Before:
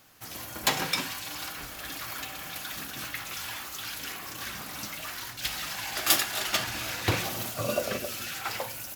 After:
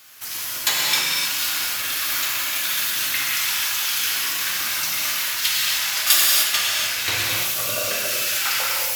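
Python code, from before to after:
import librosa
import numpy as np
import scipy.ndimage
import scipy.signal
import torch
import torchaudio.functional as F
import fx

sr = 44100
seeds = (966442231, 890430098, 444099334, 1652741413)

y = fx.rider(x, sr, range_db=3, speed_s=0.5)
y = fx.tilt_shelf(y, sr, db=-9.0, hz=850.0)
y = fx.notch(y, sr, hz=760.0, q=12.0)
y = fx.rev_gated(y, sr, seeds[0], gate_ms=330, shape='flat', drr_db=-4.0)
y = F.gain(torch.from_numpy(y), -1.0).numpy()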